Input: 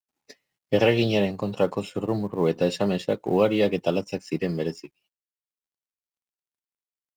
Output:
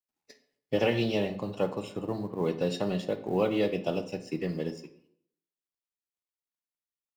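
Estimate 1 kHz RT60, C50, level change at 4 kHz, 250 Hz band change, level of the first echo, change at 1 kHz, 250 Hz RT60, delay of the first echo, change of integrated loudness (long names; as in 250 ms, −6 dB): 0.65 s, 12.5 dB, −6.0 dB, −5.5 dB, no echo audible, −5.5 dB, 0.75 s, no echo audible, −6.0 dB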